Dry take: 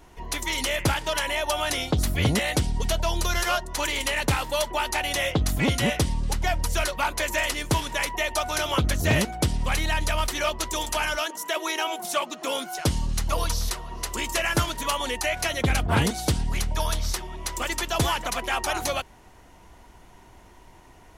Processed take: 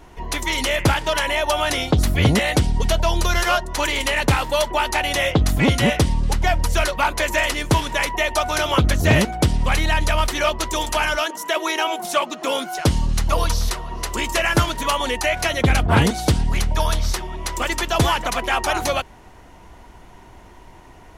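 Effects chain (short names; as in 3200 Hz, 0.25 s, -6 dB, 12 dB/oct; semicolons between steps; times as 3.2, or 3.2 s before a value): high shelf 4500 Hz -6 dB; gain +6.5 dB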